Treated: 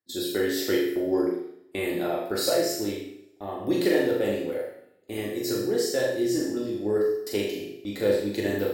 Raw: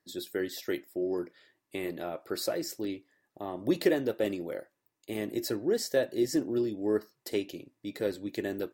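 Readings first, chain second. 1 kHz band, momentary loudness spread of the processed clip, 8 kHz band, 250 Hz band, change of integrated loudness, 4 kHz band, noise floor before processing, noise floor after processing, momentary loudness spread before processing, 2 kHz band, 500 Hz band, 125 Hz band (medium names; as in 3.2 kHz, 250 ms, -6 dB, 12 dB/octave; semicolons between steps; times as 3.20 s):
+7.0 dB, 11 LU, +7.0 dB, +5.0 dB, +6.0 dB, +7.5 dB, -82 dBFS, -56 dBFS, 14 LU, +7.0 dB, +6.0 dB, +6.0 dB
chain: gate -46 dBFS, range -20 dB; on a send: flutter echo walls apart 6.8 m, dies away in 0.49 s; on the sum: two-slope reverb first 0.64 s, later 1.7 s, from -24 dB, DRR -1.5 dB; gain riding 2 s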